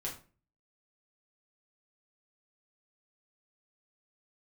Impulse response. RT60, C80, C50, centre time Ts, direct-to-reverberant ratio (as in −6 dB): 0.35 s, 14.5 dB, 8.5 dB, 24 ms, −4.0 dB